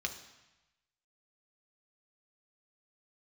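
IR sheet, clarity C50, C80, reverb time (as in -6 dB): 10.0 dB, 12.5 dB, 1.0 s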